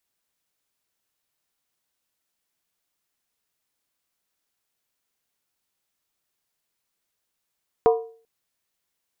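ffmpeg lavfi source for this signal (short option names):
-f lavfi -i "aevalsrc='0.282*pow(10,-3*t/0.44)*sin(2*PI*454*t)+0.141*pow(10,-3*t/0.349)*sin(2*PI*723.7*t)+0.0708*pow(10,-3*t/0.301)*sin(2*PI*969.7*t)+0.0355*pow(10,-3*t/0.29)*sin(2*PI*1042.4*t)+0.0178*pow(10,-3*t/0.27)*sin(2*PI*1204.5*t)':d=0.39:s=44100"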